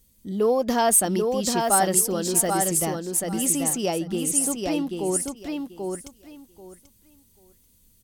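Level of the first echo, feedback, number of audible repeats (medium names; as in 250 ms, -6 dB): -4.0 dB, 19%, 3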